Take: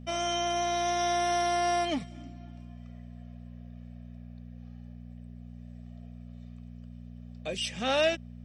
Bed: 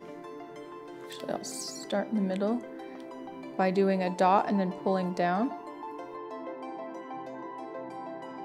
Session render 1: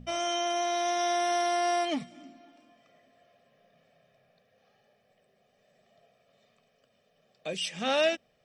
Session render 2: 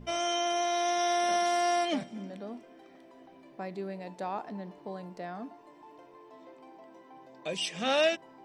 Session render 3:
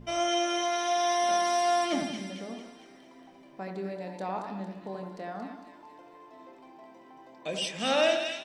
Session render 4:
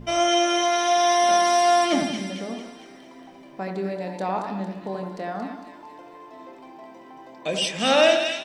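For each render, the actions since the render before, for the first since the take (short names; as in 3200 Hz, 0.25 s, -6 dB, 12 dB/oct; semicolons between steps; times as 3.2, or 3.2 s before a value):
de-hum 60 Hz, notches 4
add bed -12.5 dB
doubler 26 ms -11 dB; split-band echo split 1700 Hz, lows 81 ms, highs 0.227 s, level -5 dB
gain +7.5 dB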